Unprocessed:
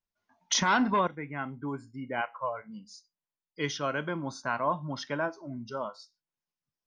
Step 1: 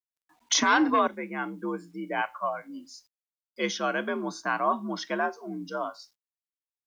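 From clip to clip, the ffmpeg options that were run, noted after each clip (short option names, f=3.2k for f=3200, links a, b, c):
-af "afreqshift=59,acrusher=bits=11:mix=0:aa=0.000001,volume=3dB"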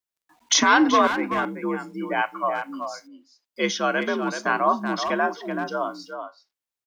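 -filter_complex "[0:a]asplit=2[a][b];[b]adelay=380,highpass=300,lowpass=3.4k,asoftclip=type=hard:threshold=-19.5dB,volume=-7dB[c];[a][c]amix=inputs=2:normalize=0,volume=5dB"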